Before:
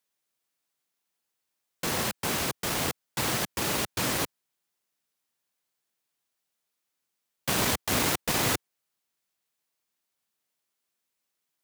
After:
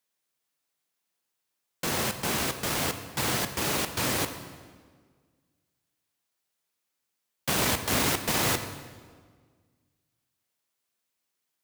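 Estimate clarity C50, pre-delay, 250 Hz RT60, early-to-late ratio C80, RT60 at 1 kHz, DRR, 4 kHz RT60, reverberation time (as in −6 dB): 9.5 dB, 13 ms, 1.9 s, 11.0 dB, 1.6 s, 8.0 dB, 1.3 s, 1.6 s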